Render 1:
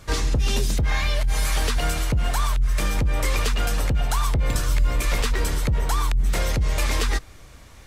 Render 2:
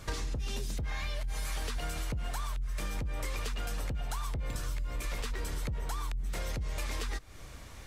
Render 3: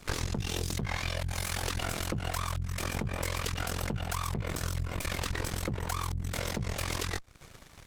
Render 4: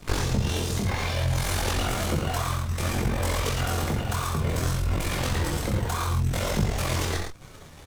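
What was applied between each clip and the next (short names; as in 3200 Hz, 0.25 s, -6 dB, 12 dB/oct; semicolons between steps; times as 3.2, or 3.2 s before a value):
compressor 6:1, threshold -31 dBFS, peak gain reduction 15 dB; gain -1.5 dB
one-sided clip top -34 dBFS; added harmonics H 3 -26 dB, 4 -8 dB, 7 -16 dB, 8 -18 dB, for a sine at -22.5 dBFS
loudspeakers at several distances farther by 21 m -5 dB, 37 m -6 dB; in parallel at -5.5 dB: sample-and-hold 17×; on the sum: detuned doubles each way 21 cents; gain +6 dB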